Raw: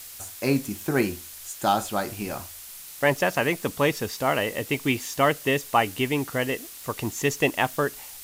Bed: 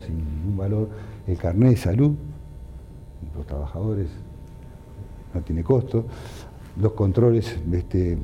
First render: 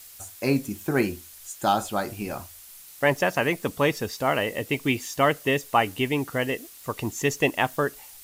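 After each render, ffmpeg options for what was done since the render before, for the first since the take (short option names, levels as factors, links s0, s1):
-af "afftdn=nr=6:nf=-42"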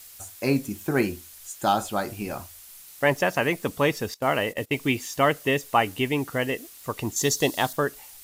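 -filter_complex "[0:a]asettb=1/sr,asplit=3[s0][s1][s2];[s0]atrim=end=4.144[s3];[s1]atrim=start=4.14:end=4.77,asetpts=PTS-STARTPTS,afade=t=in:d=0.004:c=qsin,afade=t=out:st=0.626:d=0.004:c=qsin,agate=range=0.126:threshold=0.0178:ratio=16:release=100:detection=peak[s4];[s2]atrim=start=4.766[s5];[s3][s4]acrossfade=d=0.004:c1=hsin:c2=qsin[s6];[s6][s5]acrossfade=d=0.004:c1=qsin:c2=hsin,asettb=1/sr,asplit=3[s7][s8][s9];[s7]atrim=end=7.164[s10];[s8]atrim=start=7.16:end=7.73,asetpts=PTS-STARTPTS,afade=t=in:d=0.004:c=qsin,afade=t=out:st=0.566:d=0.004:c=qsin,highshelf=f=3200:t=q:w=3:g=6.5[s11];[s9]atrim=start=7.726[s12];[s10][s11]acrossfade=d=0.004:c1=hsin:c2=qsin[s13];[s13][s12]acrossfade=d=0.004:c1=qsin:c2=hsin"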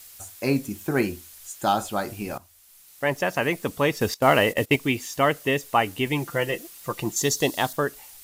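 -filter_complex "[0:a]asettb=1/sr,asplit=3[s0][s1][s2];[s0]atrim=end=4.014[s3];[s1]atrim=start=4.01:end=4.76,asetpts=PTS-STARTPTS,afade=t=in:d=0.004:c=qsin,afade=t=out:st=0.746:d=0.004:c=qsin,acontrast=56[s4];[s2]atrim=start=4.756[s5];[s3][s4]acrossfade=d=0.004:c1=hsin:c2=qsin[s6];[s6][s5]acrossfade=d=0.004:c1=qsin:c2=hsin,asettb=1/sr,asplit=3[s7][s8][s9];[s7]atrim=end=6.064[s10];[s8]atrim=start=6.06:end=7.2,asetpts=PTS-STARTPTS,afade=t=in:d=0.004:c=qsin,afade=t=out:st=1.136:d=0.004:c=qsin,aecho=1:1:5.8:0.65,atrim=end_sample=50274[s11];[s9]atrim=start=7.196[s12];[s10][s11]acrossfade=d=0.004:c1=hsin:c2=qsin[s13];[s13][s12]acrossfade=d=0.004:c1=qsin:c2=hsin,asplit=2[s14][s15];[s14]atrim=end=2.38,asetpts=PTS-STARTPTS,afade=t=out:st=2.376:d=0.004:c=hsin:silence=0.199526[s16];[s15]atrim=start=2.38,asetpts=PTS-STARTPTS,afade=t=in:d=1.1:silence=0.199526[s17];[s16][s17]concat=n=2:v=0:a=1"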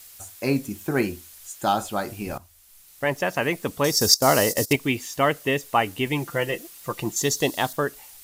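-filter_complex "[0:a]asettb=1/sr,asplit=3[s0][s1][s2];[s0]atrim=end=2.264[s3];[s1]atrim=start=2.26:end=3.05,asetpts=PTS-STARTPTS,afade=t=in:d=0.004:c=qsin,afade=t=out:st=0.786:d=0.004:c=qsin,lowshelf=f=88:g=10.5[s4];[s2]atrim=start=3.046[s5];[s3][s4]acrossfade=d=0.004:c1=hsin:c2=qsin[s6];[s6][s5]acrossfade=d=0.004:c1=qsin:c2=hsin,asettb=1/sr,asplit=3[s7][s8][s9];[s7]atrim=end=3.844[s10];[s8]atrim=start=3.84:end=4.73,asetpts=PTS-STARTPTS,afade=t=in:d=0.004:c=qsin,afade=t=out:st=0.886:d=0.004:c=qsin,highshelf=f=3800:t=q:w=3:g=11.5[s11];[s9]atrim=start=4.726[s12];[s10][s11]acrossfade=d=0.004:c1=hsin:c2=qsin[s13];[s13][s12]acrossfade=d=0.004:c1=qsin:c2=hsin"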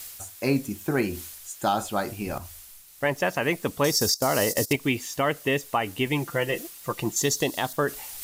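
-af "areverse,acompressor=mode=upward:threshold=0.0316:ratio=2.5,areverse,alimiter=limit=0.237:level=0:latency=1:release=109"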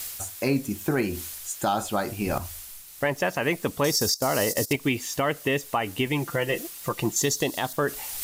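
-af "acontrast=29,alimiter=limit=0.2:level=0:latency=1:release=375"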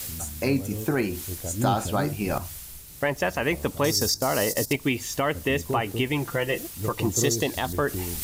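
-filter_complex "[1:a]volume=0.282[s0];[0:a][s0]amix=inputs=2:normalize=0"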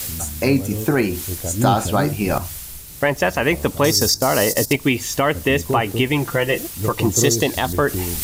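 -af "volume=2.24"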